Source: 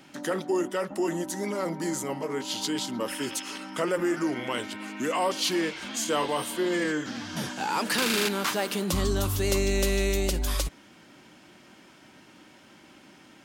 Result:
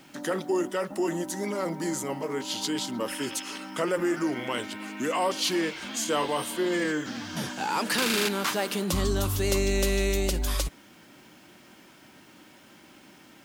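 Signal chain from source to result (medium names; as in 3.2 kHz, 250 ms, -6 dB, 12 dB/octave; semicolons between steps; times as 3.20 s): bit crusher 10-bit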